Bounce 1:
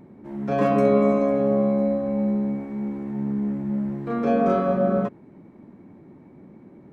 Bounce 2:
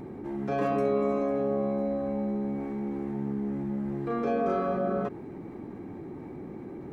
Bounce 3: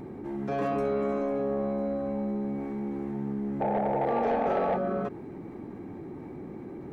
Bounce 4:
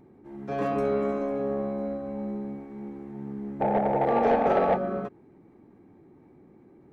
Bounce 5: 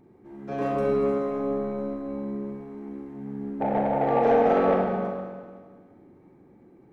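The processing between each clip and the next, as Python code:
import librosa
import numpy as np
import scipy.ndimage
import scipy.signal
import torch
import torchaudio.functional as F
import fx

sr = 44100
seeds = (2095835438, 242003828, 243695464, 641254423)

y1 = x + 0.41 * np.pad(x, (int(2.5 * sr / 1000.0), 0))[:len(x)]
y1 = fx.env_flatten(y1, sr, amount_pct=50)
y1 = y1 * librosa.db_to_amplitude(-8.5)
y2 = fx.spec_paint(y1, sr, seeds[0], shape='noise', start_s=3.6, length_s=1.18, low_hz=410.0, high_hz=910.0, level_db=-26.0)
y2 = 10.0 ** (-20.5 / 20.0) * np.tanh(y2 / 10.0 ** (-20.5 / 20.0))
y3 = fx.upward_expand(y2, sr, threshold_db=-38.0, expansion=2.5)
y3 = y3 * librosa.db_to_amplitude(6.0)
y4 = fx.rev_schroeder(y3, sr, rt60_s=1.6, comb_ms=32, drr_db=0.5)
y4 = y4 * librosa.db_to_amplitude(-2.0)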